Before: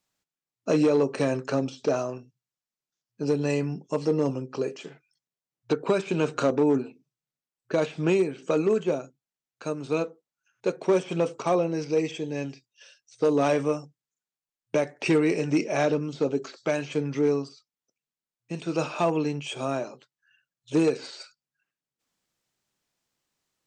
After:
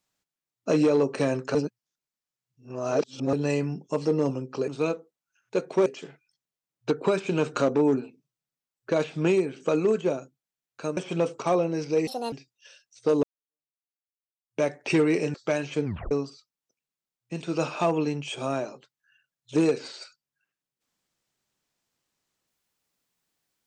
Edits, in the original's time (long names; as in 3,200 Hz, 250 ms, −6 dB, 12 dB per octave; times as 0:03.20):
0:01.55–0:03.33: reverse
0:09.79–0:10.97: move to 0:04.68
0:12.07–0:12.48: play speed 163%
0:13.39–0:14.79: fade in exponential
0:15.50–0:16.53: remove
0:17.04: tape stop 0.26 s